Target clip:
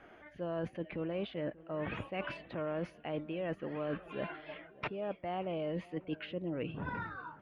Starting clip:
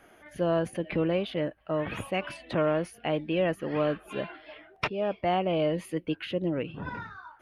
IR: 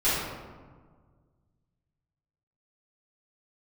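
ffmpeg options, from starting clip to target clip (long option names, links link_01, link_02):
-filter_complex "[0:a]lowpass=3100,areverse,acompressor=threshold=-35dB:ratio=6,areverse,asplit=2[link_01][link_02];[link_02]adelay=586,lowpass=frequency=1300:poles=1,volume=-19.5dB,asplit=2[link_03][link_04];[link_04]adelay=586,lowpass=frequency=1300:poles=1,volume=0.55,asplit=2[link_05][link_06];[link_06]adelay=586,lowpass=frequency=1300:poles=1,volume=0.55,asplit=2[link_07][link_08];[link_08]adelay=586,lowpass=frequency=1300:poles=1,volume=0.55[link_09];[link_01][link_03][link_05][link_07][link_09]amix=inputs=5:normalize=0"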